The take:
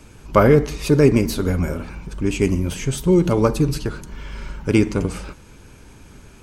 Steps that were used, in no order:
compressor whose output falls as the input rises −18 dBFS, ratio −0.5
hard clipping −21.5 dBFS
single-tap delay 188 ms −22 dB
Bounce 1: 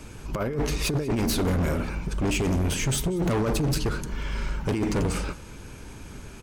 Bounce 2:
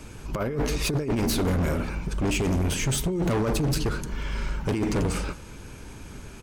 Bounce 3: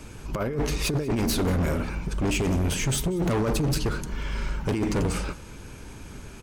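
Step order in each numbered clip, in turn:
compressor whose output falls as the input rises, then single-tap delay, then hard clipping
single-tap delay, then compressor whose output falls as the input rises, then hard clipping
compressor whose output falls as the input rises, then hard clipping, then single-tap delay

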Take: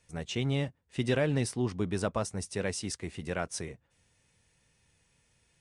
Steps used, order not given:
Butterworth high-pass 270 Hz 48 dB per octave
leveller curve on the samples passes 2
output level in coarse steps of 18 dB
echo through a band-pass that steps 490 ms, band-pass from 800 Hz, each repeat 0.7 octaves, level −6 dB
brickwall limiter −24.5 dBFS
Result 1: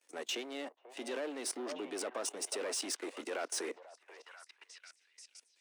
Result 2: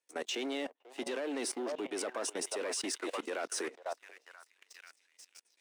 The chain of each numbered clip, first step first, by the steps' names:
brickwall limiter, then leveller curve on the samples, then echo through a band-pass that steps, then output level in coarse steps, then Butterworth high-pass
echo through a band-pass that steps, then leveller curve on the samples, then Butterworth high-pass, then output level in coarse steps, then brickwall limiter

